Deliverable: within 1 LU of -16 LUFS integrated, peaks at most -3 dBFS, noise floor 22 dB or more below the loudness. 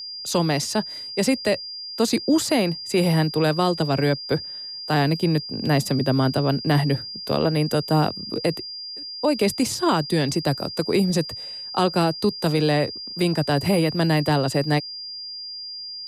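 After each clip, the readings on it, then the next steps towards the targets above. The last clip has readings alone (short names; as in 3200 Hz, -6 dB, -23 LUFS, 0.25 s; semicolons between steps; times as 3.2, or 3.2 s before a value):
steady tone 4800 Hz; tone level -32 dBFS; loudness -22.5 LUFS; peak -9.5 dBFS; loudness target -16.0 LUFS
-> notch 4800 Hz, Q 30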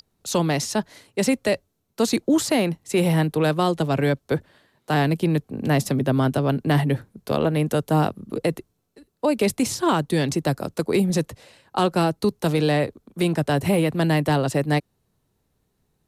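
steady tone none; loudness -22.5 LUFS; peak -10.0 dBFS; loudness target -16.0 LUFS
-> gain +6.5 dB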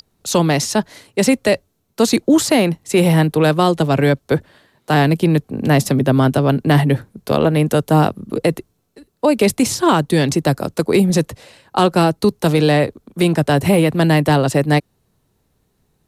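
loudness -16.0 LUFS; peak -3.5 dBFS; noise floor -66 dBFS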